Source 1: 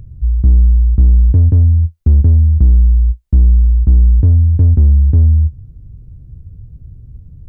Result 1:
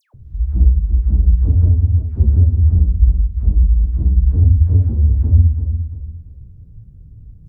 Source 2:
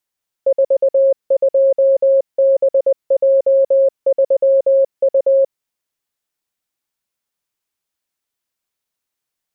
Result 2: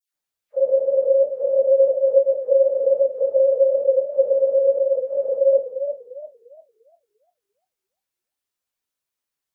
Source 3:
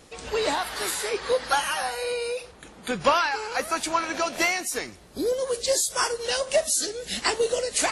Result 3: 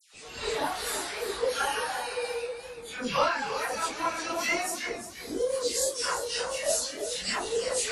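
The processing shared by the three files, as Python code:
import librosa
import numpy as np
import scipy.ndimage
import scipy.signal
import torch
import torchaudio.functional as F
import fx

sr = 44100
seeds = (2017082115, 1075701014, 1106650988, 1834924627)

y = fx.phase_scramble(x, sr, seeds[0], window_ms=100)
y = fx.dispersion(y, sr, late='lows', ms=142.0, hz=1700.0)
y = fx.echo_warbled(y, sr, ms=346, feedback_pct=30, rate_hz=2.8, cents=100, wet_db=-9.5)
y = F.gain(torch.from_numpy(y), -4.5).numpy()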